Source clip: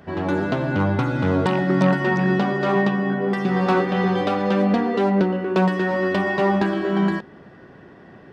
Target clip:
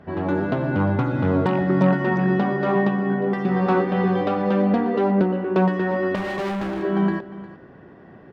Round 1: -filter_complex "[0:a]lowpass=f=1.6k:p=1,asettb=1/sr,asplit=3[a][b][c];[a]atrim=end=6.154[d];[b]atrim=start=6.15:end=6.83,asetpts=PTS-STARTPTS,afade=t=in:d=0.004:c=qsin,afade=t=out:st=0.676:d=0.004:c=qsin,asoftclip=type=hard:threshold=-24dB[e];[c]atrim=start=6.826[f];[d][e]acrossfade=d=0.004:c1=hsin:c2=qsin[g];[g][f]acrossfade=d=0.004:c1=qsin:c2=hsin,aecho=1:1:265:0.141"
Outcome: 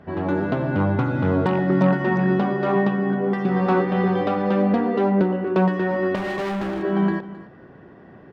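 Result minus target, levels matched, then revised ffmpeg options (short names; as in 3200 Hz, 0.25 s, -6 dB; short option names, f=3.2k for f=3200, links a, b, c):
echo 91 ms early
-filter_complex "[0:a]lowpass=f=1.6k:p=1,asettb=1/sr,asplit=3[a][b][c];[a]atrim=end=6.154[d];[b]atrim=start=6.15:end=6.83,asetpts=PTS-STARTPTS,afade=t=in:d=0.004:c=qsin,afade=t=out:st=0.676:d=0.004:c=qsin,asoftclip=type=hard:threshold=-24dB[e];[c]atrim=start=6.826[f];[d][e]acrossfade=d=0.004:c1=hsin:c2=qsin[g];[g][f]acrossfade=d=0.004:c1=qsin:c2=hsin,aecho=1:1:356:0.141"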